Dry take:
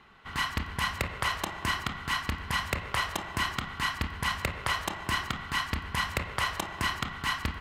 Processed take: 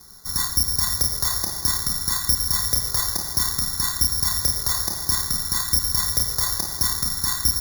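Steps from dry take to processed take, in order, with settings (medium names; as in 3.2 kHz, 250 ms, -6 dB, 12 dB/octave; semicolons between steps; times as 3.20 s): steep low-pass 2 kHz 96 dB/octave; tilt EQ -2.5 dB/octave; in parallel at +2.5 dB: peak limiter -20.5 dBFS, peak gain reduction 8 dB; on the sum: saturation -10 dBFS, distortion -23 dB; on a send: feedback echo behind a high-pass 511 ms, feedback 59%, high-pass 1.4 kHz, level -7 dB; on the sum: careless resampling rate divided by 8×, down filtered, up zero stuff; trim -8.5 dB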